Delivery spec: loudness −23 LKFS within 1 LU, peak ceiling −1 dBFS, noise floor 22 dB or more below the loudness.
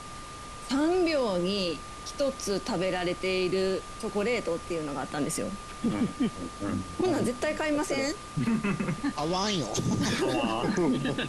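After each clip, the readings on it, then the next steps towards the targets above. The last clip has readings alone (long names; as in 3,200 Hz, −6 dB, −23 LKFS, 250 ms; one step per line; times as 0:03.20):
interfering tone 1,200 Hz; level of the tone −43 dBFS; background noise floor −42 dBFS; target noise floor −52 dBFS; integrated loudness −29.5 LKFS; sample peak −17.5 dBFS; target loudness −23.0 LKFS
→ notch filter 1,200 Hz, Q 30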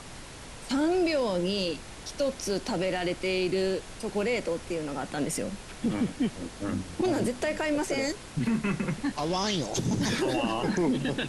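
interfering tone none found; background noise floor −44 dBFS; target noise floor −52 dBFS
→ noise reduction from a noise print 8 dB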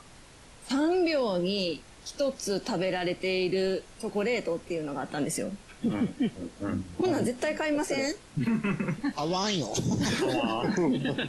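background noise floor −52 dBFS; integrated loudness −29.5 LKFS; sample peak −18.0 dBFS; target loudness −23.0 LKFS
→ level +6.5 dB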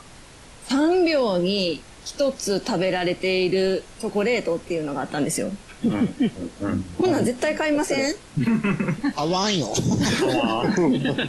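integrated loudness −23.0 LKFS; sample peak −11.5 dBFS; background noise floor −45 dBFS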